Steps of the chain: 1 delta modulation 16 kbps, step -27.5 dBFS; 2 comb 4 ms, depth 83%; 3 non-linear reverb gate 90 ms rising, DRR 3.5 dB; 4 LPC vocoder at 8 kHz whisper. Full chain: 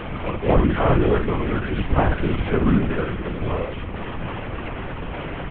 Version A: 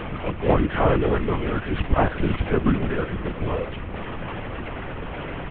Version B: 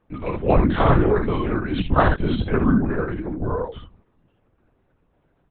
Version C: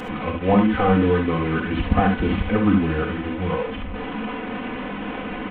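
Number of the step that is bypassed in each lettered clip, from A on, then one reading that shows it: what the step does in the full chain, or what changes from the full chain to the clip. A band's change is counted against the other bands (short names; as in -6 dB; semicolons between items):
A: 3, loudness change -2.0 LU; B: 1, 1 kHz band +2.0 dB; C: 4, 125 Hz band -3.5 dB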